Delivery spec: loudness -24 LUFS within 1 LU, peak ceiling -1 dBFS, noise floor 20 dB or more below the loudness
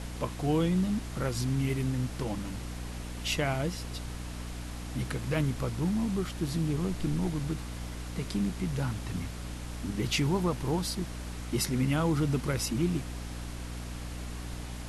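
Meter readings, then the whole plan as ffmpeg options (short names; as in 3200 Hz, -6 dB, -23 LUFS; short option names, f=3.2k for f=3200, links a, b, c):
hum 60 Hz; harmonics up to 300 Hz; hum level -37 dBFS; noise floor -39 dBFS; noise floor target -52 dBFS; loudness -32.0 LUFS; peak -15.5 dBFS; loudness target -24.0 LUFS
-> -af "bandreject=f=60:t=h:w=6,bandreject=f=120:t=h:w=6,bandreject=f=180:t=h:w=6,bandreject=f=240:t=h:w=6,bandreject=f=300:t=h:w=6"
-af "afftdn=nr=13:nf=-39"
-af "volume=8dB"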